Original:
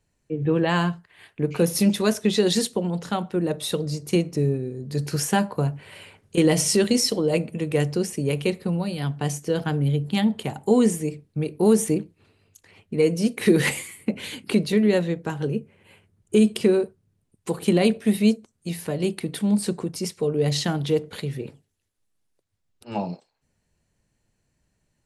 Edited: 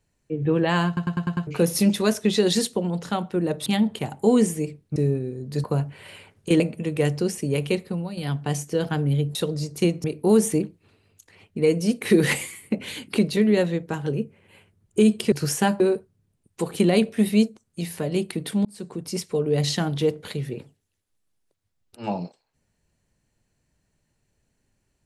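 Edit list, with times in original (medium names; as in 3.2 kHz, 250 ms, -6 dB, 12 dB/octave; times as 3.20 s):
0.87 s: stutter in place 0.10 s, 6 plays
3.66–4.35 s: swap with 10.10–11.40 s
5.03–5.51 s: move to 16.68 s
6.47–7.35 s: delete
8.47–8.92 s: fade out, to -8 dB
19.53–20.04 s: fade in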